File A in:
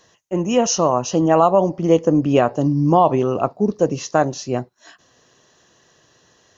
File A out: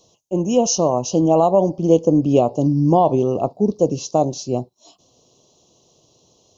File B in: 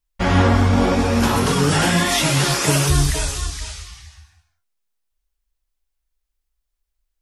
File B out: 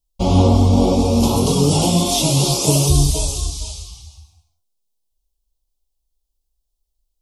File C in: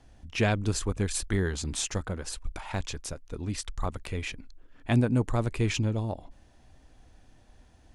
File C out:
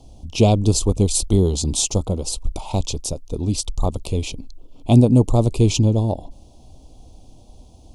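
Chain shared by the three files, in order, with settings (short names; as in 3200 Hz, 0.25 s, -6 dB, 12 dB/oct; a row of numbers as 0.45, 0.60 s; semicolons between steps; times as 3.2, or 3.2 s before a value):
Butterworth band-stop 1700 Hz, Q 0.67; normalise peaks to -2 dBFS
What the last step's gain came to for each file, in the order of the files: +1.0, +2.5, +11.5 dB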